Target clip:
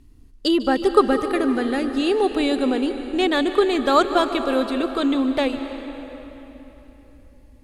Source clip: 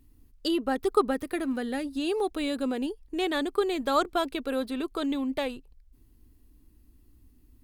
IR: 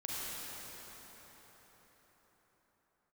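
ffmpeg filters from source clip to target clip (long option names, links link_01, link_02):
-filter_complex "[0:a]lowpass=8200,asplit=2[link_01][link_02];[1:a]atrim=start_sample=2205,asetrate=61740,aresample=44100,adelay=149[link_03];[link_02][link_03]afir=irnorm=-1:irlink=0,volume=-9dB[link_04];[link_01][link_04]amix=inputs=2:normalize=0,volume=8dB"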